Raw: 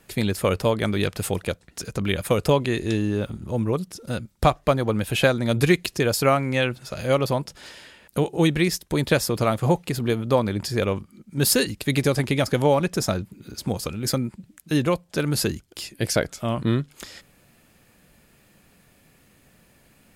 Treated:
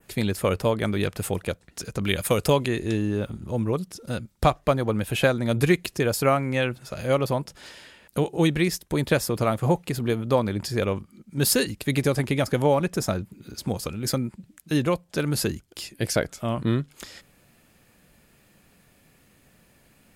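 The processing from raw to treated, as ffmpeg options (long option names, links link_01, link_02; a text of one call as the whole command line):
ffmpeg -i in.wav -filter_complex "[0:a]asettb=1/sr,asplit=3[link_01][link_02][link_03];[link_01]atrim=end=2.024[link_04];[link_02]atrim=start=2.02:end=2.68,asetpts=PTS-STARTPTS,afade=type=in:duration=0.004:curve=qsin,afade=type=out:start_time=0.656:duration=0.004:curve=qsin,highshelf=frequency=2800:gain=7.5[link_05];[link_03]atrim=start=2.676[link_06];[link_04][link_05]acrossfade=duration=0.004:curve1=hsin:curve2=qsin[link_07];[link_07][link_06]acrossfade=duration=0.004:curve1=qsin:curve2=hsin,adynamicequalizer=threshold=0.00708:dfrequency=4400:dqfactor=0.98:tfrequency=4400:tqfactor=0.98:attack=5:release=100:ratio=0.375:range=2:mode=cutabove:tftype=bell,volume=-1.5dB" out.wav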